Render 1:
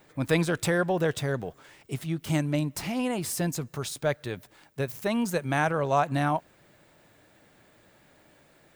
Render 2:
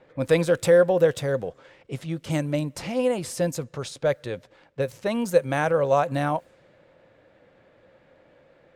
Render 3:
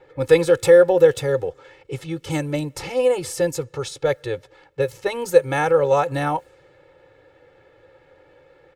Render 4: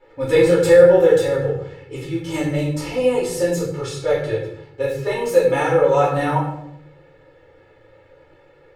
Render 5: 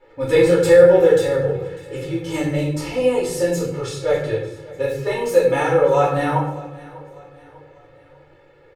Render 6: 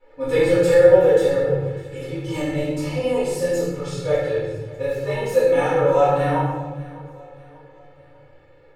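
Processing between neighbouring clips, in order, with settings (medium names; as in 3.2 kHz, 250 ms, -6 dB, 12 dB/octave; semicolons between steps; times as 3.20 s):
level-controlled noise filter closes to 2.9 kHz, open at -24.5 dBFS; peaking EQ 520 Hz +14.5 dB 0.23 oct
comb 2.3 ms, depth 100%; trim +1 dB
reverberation RT60 0.75 s, pre-delay 3 ms, DRR -9 dB; trim -7.5 dB
feedback delay 597 ms, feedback 43%, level -20 dB
simulated room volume 300 m³, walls mixed, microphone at 1.9 m; trim -8 dB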